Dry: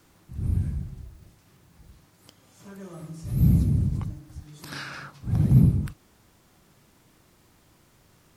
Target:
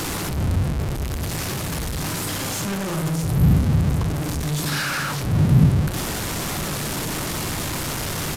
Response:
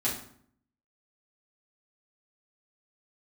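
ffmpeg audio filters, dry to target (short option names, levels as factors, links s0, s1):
-filter_complex "[0:a]aeval=exprs='val(0)+0.5*0.0944*sgn(val(0))':c=same,asplit=2[s0][s1];[1:a]atrim=start_sample=2205,asetrate=28224,aresample=44100,adelay=7[s2];[s1][s2]afir=irnorm=-1:irlink=0,volume=0.0668[s3];[s0][s3]amix=inputs=2:normalize=0,aresample=32000,aresample=44100"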